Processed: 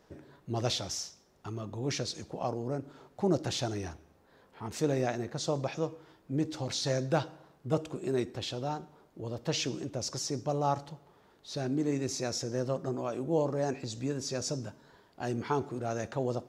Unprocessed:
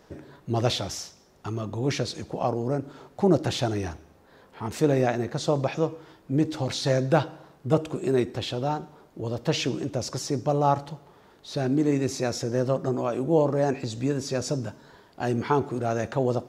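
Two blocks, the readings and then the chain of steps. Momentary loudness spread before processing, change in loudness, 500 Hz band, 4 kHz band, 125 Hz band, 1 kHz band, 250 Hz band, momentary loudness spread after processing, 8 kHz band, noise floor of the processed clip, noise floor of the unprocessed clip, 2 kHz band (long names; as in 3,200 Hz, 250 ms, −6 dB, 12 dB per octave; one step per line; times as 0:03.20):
13 LU, −7.0 dB, −7.5 dB, −3.5 dB, −7.5 dB, −7.5 dB, −7.5 dB, 13 LU, −1.5 dB, −64 dBFS, −57 dBFS, −7.0 dB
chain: dynamic equaliser 5,900 Hz, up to +7 dB, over −48 dBFS, Q 1.1
level −7.5 dB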